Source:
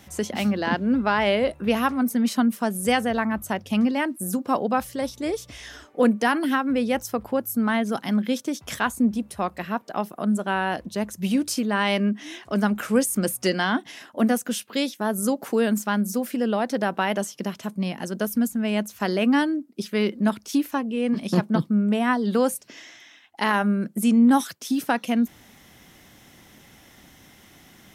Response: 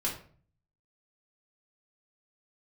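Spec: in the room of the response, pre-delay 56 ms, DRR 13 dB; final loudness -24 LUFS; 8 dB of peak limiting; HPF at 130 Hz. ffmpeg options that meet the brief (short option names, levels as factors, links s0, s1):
-filter_complex "[0:a]highpass=130,alimiter=limit=0.188:level=0:latency=1,asplit=2[s0][s1];[1:a]atrim=start_sample=2205,adelay=56[s2];[s1][s2]afir=irnorm=-1:irlink=0,volume=0.126[s3];[s0][s3]amix=inputs=2:normalize=0,volume=1.19"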